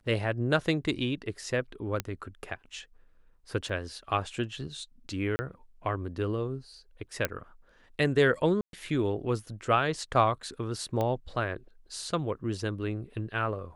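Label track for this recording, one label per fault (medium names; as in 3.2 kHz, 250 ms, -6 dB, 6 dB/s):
2.000000	2.000000	pop -14 dBFS
3.690000	3.690000	dropout 3.9 ms
5.360000	5.390000	dropout 30 ms
7.250000	7.250000	pop -11 dBFS
8.610000	8.730000	dropout 122 ms
11.010000	11.010000	pop -18 dBFS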